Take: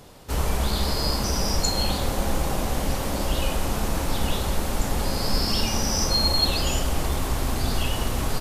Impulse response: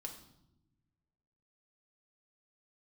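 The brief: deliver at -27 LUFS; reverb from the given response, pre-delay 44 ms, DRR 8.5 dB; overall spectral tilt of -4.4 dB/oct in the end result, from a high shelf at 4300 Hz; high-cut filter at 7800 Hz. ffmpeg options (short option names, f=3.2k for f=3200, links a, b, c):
-filter_complex "[0:a]lowpass=7.8k,highshelf=f=4.3k:g=-3.5,asplit=2[a][b];[1:a]atrim=start_sample=2205,adelay=44[c];[b][c]afir=irnorm=-1:irlink=0,volume=-5dB[d];[a][d]amix=inputs=2:normalize=0,volume=-1.5dB"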